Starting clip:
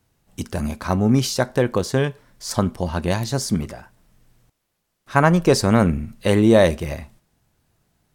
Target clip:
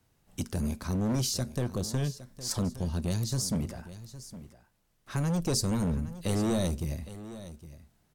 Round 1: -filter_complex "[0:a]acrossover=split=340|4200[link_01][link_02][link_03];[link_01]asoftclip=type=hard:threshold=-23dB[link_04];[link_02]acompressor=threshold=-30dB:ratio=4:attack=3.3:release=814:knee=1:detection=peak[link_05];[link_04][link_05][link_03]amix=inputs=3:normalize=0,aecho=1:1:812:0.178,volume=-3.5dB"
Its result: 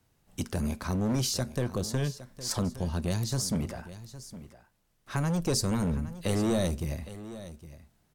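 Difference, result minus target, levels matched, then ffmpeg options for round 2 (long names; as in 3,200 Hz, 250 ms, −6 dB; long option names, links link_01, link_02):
downward compressor: peak gain reduction −5 dB
-filter_complex "[0:a]acrossover=split=340|4200[link_01][link_02][link_03];[link_01]asoftclip=type=hard:threshold=-23dB[link_04];[link_02]acompressor=threshold=-37dB:ratio=4:attack=3.3:release=814:knee=1:detection=peak[link_05];[link_04][link_05][link_03]amix=inputs=3:normalize=0,aecho=1:1:812:0.178,volume=-3.5dB"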